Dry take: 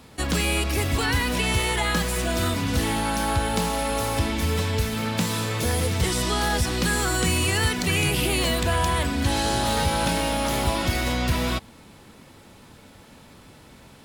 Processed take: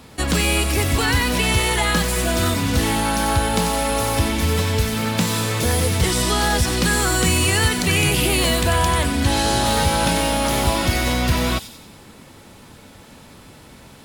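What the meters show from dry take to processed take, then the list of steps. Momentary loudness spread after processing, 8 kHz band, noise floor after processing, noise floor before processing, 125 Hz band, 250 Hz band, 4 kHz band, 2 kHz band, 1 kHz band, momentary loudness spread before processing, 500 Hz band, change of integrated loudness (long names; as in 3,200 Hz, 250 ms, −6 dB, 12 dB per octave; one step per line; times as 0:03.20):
3 LU, +6.0 dB, −44 dBFS, −49 dBFS, +4.5 dB, +4.5 dB, +5.0 dB, +4.5 dB, +4.5 dB, 3 LU, +4.5 dB, +5.0 dB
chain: delay with a high-pass on its return 93 ms, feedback 51%, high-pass 5,300 Hz, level −4 dB
level +4.5 dB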